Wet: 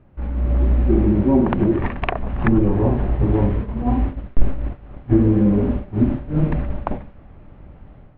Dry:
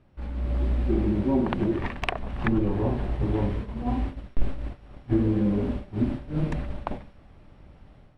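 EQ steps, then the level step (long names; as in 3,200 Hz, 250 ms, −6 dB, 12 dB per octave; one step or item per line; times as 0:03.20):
high-frequency loss of the air 480 metres
+8.5 dB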